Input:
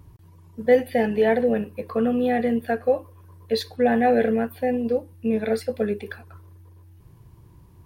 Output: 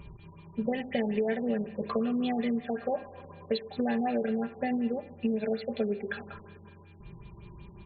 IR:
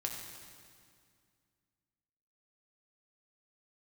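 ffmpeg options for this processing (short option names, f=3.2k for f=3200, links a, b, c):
-filter_complex "[0:a]aecho=1:1:5:0.71,acompressor=threshold=-30dB:ratio=6,aexciter=amount=1.5:drive=9.4:freq=2.5k,aeval=exprs='val(0)+0.000562*sin(2*PI*2400*n/s)':c=same,asplit=2[a][b];[1:a]atrim=start_sample=2205[c];[b][c]afir=irnorm=-1:irlink=0,volume=-7dB[d];[a][d]amix=inputs=2:normalize=0,afftfilt=real='re*lt(b*sr/1024,990*pow(4600/990,0.5+0.5*sin(2*PI*5.4*pts/sr)))':imag='im*lt(b*sr/1024,990*pow(4600/990,0.5+0.5*sin(2*PI*5.4*pts/sr)))':win_size=1024:overlap=0.75"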